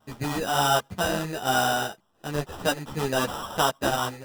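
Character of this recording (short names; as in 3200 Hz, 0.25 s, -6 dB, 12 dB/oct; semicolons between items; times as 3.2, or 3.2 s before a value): aliases and images of a low sample rate 2200 Hz, jitter 0%; a shimmering, thickened sound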